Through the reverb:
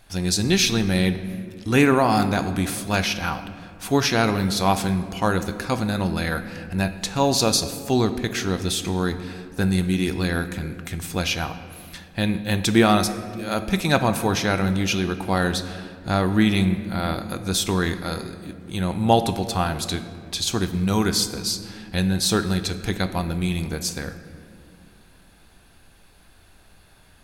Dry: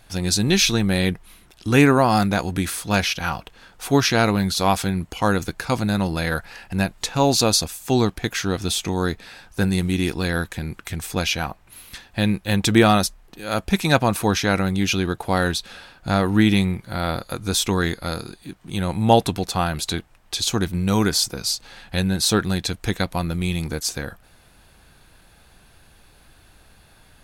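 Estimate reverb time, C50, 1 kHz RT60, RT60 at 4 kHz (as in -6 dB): 2.3 s, 11.0 dB, 1.9 s, 1.2 s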